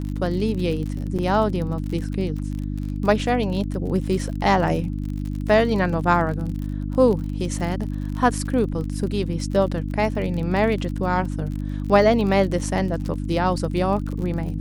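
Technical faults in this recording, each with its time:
crackle 44/s -29 dBFS
hum 50 Hz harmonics 6 -27 dBFS
1.18–1.19 gap 6.9 ms

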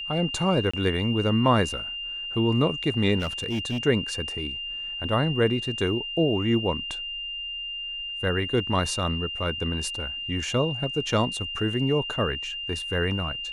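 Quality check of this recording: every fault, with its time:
tone 2800 Hz -31 dBFS
0.71–0.73 gap 25 ms
3.19–3.78 clipped -23.5 dBFS

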